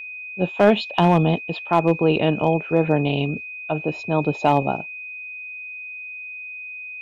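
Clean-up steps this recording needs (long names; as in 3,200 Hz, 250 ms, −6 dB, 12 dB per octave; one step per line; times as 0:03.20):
clipped peaks rebuilt −6.5 dBFS
notch filter 2,500 Hz, Q 30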